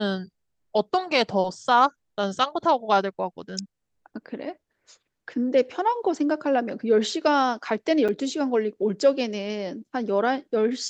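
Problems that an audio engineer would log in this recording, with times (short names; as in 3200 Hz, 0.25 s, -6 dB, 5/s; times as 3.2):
8.08–8.09 gap 6.1 ms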